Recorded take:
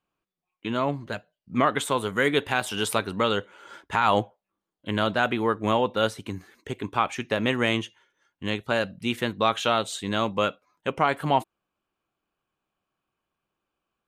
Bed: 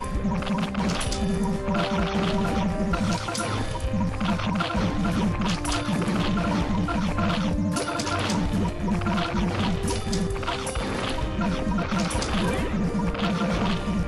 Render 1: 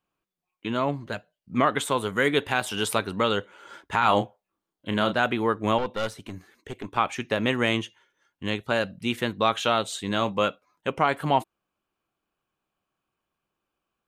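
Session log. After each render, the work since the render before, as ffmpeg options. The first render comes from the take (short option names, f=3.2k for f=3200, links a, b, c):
-filter_complex "[0:a]asettb=1/sr,asplit=3[a][b][c];[a]atrim=end=3.994[d];[b]atrim=start=3.99:end=5.13,asetpts=PTS-STARTPTS,afade=t=in:d=0.004:c=qsin,afade=t=out:st=1.136:d=0.004:c=qsin,asplit=2[e][f];[f]adelay=33,volume=-9dB[g];[e][g]amix=inputs=2:normalize=0,atrim=end_sample=50274[h];[c]atrim=start=5.126[i];[d][h]acrossfade=d=0.004:c1=hsin:c2=qsin[j];[j][i]acrossfade=d=0.004:c1=qsin:c2=hsin,asettb=1/sr,asplit=3[k][l][m];[k]atrim=end=5.784[n];[l]atrim=start=5.78:end=6.97,asetpts=PTS-STARTPTS,afade=t=in:d=0.004:c=qsin,afade=t=out:st=1.186:d=0.004:c=qsin,aeval=exprs='(tanh(11.2*val(0)+0.6)-tanh(0.6))/11.2':c=same[o];[m]atrim=start=6.966[p];[n][o]acrossfade=d=0.004:c1=hsin:c2=qsin[q];[q][p]acrossfade=d=0.004:c1=qsin:c2=hsin,asettb=1/sr,asplit=3[r][s][t];[r]atrim=end=10.074[u];[s]atrim=start=10.07:end=10.48,asetpts=PTS-STARTPTS,afade=t=in:d=0.004:c=qsin,afade=t=out:st=0.406:d=0.004:c=qsin,asplit=2[v][w];[w]adelay=25,volume=-13dB[x];[v][x]amix=inputs=2:normalize=0,atrim=end_sample=18081[y];[t]atrim=start=10.476[z];[u][y]acrossfade=d=0.004:c1=hsin:c2=qsin[aa];[aa][z]acrossfade=d=0.004:c1=qsin:c2=hsin"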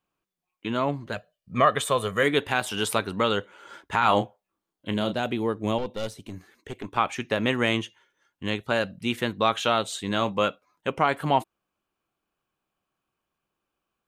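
-filter_complex "[0:a]asettb=1/sr,asplit=3[a][b][c];[a]atrim=end=1.164[d];[b]atrim=start=1.16:end=2.23,asetpts=PTS-STARTPTS,afade=t=in:d=0.004:c=qsin,afade=t=out:st=1.066:d=0.004:c=qsin,aecho=1:1:1.7:0.58,atrim=end_sample=47187[e];[c]atrim=start=2.226[f];[d][e]acrossfade=d=0.004:c1=hsin:c2=qsin[g];[g][f]acrossfade=d=0.004:c1=qsin:c2=hsin,asettb=1/sr,asplit=3[h][i][j];[h]atrim=end=4.924[k];[i]atrim=start=4.92:end=6.32,asetpts=PTS-STARTPTS,afade=t=in:d=0.004:c=qsin,afade=t=out:st=1.396:d=0.004:c=qsin,equalizer=f=1.4k:t=o:w=1.5:g=-10[l];[j]atrim=start=6.316[m];[k][l]acrossfade=d=0.004:c1=hsin:c2=qsin[n];[n][m]acrossfade=d=0.004:c1=qsin:c2=hsin"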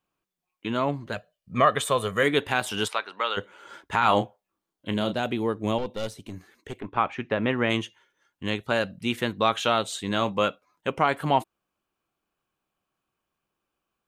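-filter_complex "[0:a]asplit=3[a][b][c];[a]afade=t=out:st=2.87:d=0.02[d];[b]highpass=790,lowpass=4k,afade=t=in:st=2.87:d=0.02,afade=t=out:st=3.36:d=0.02[e];[c]afade=t=in:st=3.36:d=0.02[f];[d][e][f]amix=inputs=3:normalize=0,asplit=3[g][h][i];[g]afade=t=out:st=6.79:d=0.02[j];[h]lowpass=2.4k,afade=t=in:st=6.79:d=0.02,afade=t=out:st=7.69:d=0.02[k];[i]afade=t=in:st=7.69:d=0.02[l];[j][k][l]amix=inputs=3:normalize=0"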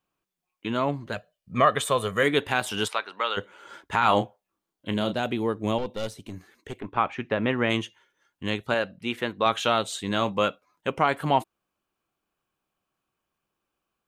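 -filter_complex "[0:a]asettb=1/sr,asplit=3[a][b][c];[a]atrim=end=8.744[d];[b]atrim=start=8.74:end=9.46,asetpts=PTS-STARTPTS,afade=t=in:d=0.004:c=qsin,afade=t=out:st=0.716:d=0.004:c=qsin,bass=f=250:g=-7,treble=f=4k:g=-8[e];[c]atrim=start=9.456[f];[d][e]acrossfade=d=0.004:c1=hsin:c2=qsin[g];[g][f]acrossfade=d=0.004:c1=qsin:c2=hsin"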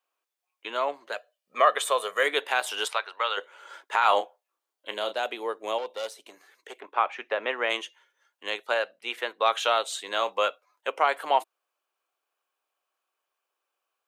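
-af "highpass=f=470:w=0.5412,highpass=f=470:w=1.3066"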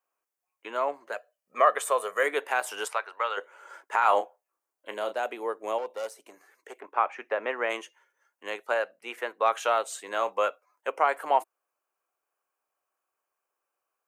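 -af "equalizer=f=3.6k:w=1.7:g=-13.5"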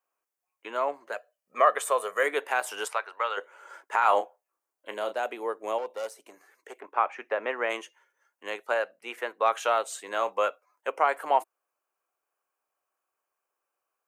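-af anull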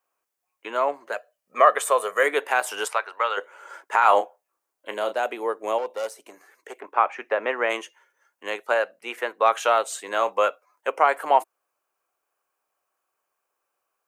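-af "volume=5dB"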